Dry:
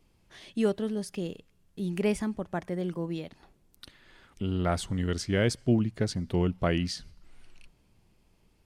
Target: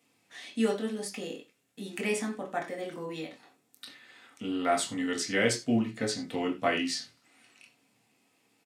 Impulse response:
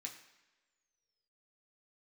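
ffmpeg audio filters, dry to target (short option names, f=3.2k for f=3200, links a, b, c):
-filter_complex "[0:a]highpass=280,asplit=2[a][b];[b]adelay=26,volume=-11dB[c];[a][c]amix=inputs=2:normalize=0[d];[1:a]atrim=start_sample=2205,afade=t=out:st=0.15:d=0.01,atrim=end_sample=7056[e];[d][e]afir=irnorm=-1:irlink=0,volume=7.5dB"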